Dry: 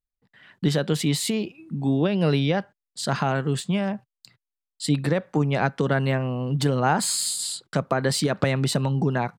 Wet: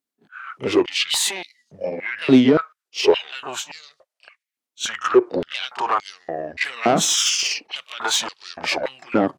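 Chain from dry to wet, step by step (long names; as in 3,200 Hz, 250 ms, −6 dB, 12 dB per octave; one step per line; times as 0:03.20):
pitch shifter swept by a sawtooth −10.5 semitones, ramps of 1,108 ms
soft clipping −19 dBFS, distortion −13 dB
echo ahead of the sound 31 ms −12 dB
high-pass on a step sequencer 3.5 Hz 270–4,500 Hz
level +8 dB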